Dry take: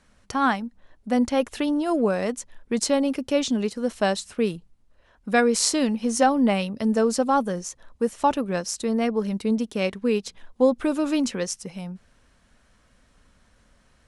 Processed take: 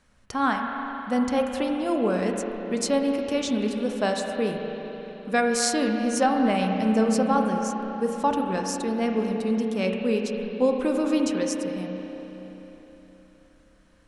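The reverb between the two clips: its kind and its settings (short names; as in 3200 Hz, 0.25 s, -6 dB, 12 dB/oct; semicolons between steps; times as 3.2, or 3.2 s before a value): spring tank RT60 3.9 s, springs 32/43 ms, chirp 55 ms, DRR 2 dB; gain -3 dB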